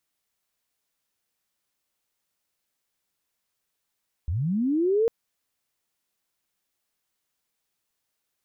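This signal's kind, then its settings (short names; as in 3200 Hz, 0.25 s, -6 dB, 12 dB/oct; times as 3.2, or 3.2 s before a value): chirp linear 69 Hz -> 470 Hz -24 dBFS -> -18 dBFS 0.80 s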